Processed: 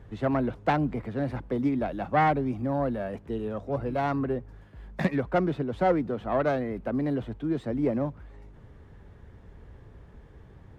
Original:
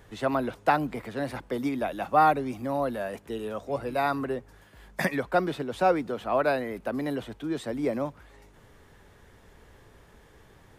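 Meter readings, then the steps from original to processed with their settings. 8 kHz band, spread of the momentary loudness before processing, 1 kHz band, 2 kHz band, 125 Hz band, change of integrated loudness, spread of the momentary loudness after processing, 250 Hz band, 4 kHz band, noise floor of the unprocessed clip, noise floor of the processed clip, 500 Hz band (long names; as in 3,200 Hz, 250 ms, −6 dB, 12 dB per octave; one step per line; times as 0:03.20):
below −10 dB, 9 LU, −3.0 dB, −3.0 dB, +7.0 dB, 0.0 dB, 8 LU, +3.0 dB, −5.5 dB, −56 dBFS, −51 dBFS, −0.5 dB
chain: phase distortion by the signal itself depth 0.19 ms
high-pass filter 84 Hz 6 dB per octave
RIAA equalisation playback
level −2.5 dB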